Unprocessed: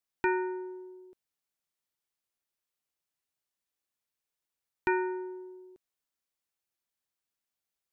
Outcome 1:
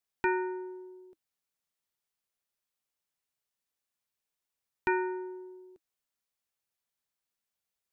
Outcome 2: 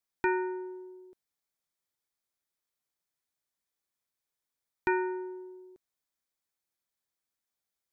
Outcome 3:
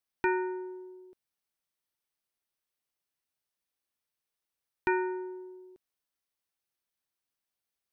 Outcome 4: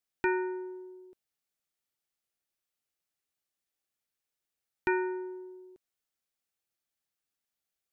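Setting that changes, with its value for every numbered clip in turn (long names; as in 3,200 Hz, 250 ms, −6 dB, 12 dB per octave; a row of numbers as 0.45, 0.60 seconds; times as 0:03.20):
notch filter, centre frequency: 320, 2,800, 7,100, 1,000 Hertz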